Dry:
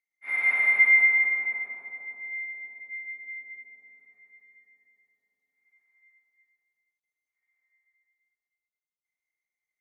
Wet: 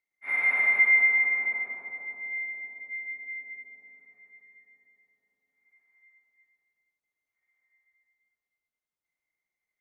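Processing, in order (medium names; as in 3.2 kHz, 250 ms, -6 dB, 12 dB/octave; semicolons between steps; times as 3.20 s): treble shelf 2.4 kHz -9 dB; in parallel at -2 dB: compression, threshold -30 dBFS, peak gain reduction 11 dB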